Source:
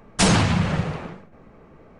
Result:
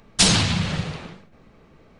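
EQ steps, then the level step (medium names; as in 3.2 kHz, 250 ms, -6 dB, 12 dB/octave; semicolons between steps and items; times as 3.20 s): bass shelf 380 Hz +6 dB; treble shelf 2.1 kHz +12 dB; peaking EQ 3.9 kHz +6.5 dB 1 oct; -8.0 dB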